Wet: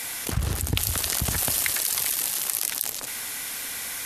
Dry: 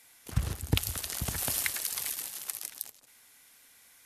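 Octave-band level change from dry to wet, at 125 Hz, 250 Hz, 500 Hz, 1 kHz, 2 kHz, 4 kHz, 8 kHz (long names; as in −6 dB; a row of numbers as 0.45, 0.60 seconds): +4.5, +4.5, +7.0, +9.0, +8.0, +8.5, +10.0 decibels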